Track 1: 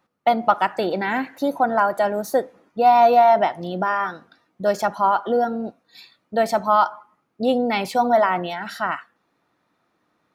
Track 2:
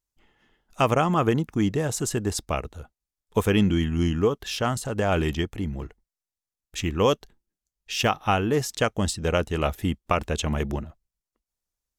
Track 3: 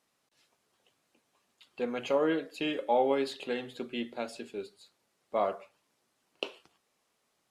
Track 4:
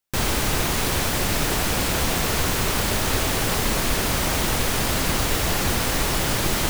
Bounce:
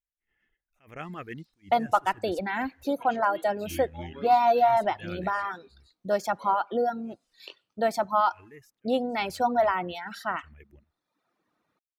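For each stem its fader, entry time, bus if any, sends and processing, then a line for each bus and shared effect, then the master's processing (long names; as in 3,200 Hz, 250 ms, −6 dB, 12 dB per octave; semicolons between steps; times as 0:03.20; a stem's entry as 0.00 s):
−5.5 dB, 1.45 s, no send, no processing
0:05.08 −9.5 dB → 0:05.53 −19.5 dB, 0.00 s, no send, octave-band graphic EQ 125/250/500/1,000/2,000/4,000/8,000 Hz −6/−4/−4/−11/+10/−9/−11 dB; level that may rise only so fast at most 150 dB per second
−11.5 dB, 1.05 s, no send, parametric band 3,900 Hz +9.5 dB 1.6 octaves; upward compression, threshold −46 dBFS; chorus effect 1.2 Hz, delay 20 ms, depth 4.9 ms
muted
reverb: not used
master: reverb reduction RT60 0.88 s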